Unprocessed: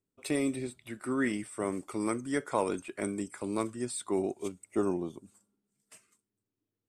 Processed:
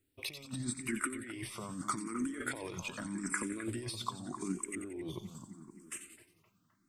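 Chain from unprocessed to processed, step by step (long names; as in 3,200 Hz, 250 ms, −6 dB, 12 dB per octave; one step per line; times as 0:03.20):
flat-topped bell 580 Hz −9 dB 1.3 octaves
compressor whose output falls as the input rises −43 dBFS, ratio −1
on a send: echo with a time of its own for lows and highs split 2,100 Hz, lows 260 ms, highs 89 ms, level −9 dB
on the sum: frequency shifter mixed with the dry sound +0.82 Hz
level +5.5 dB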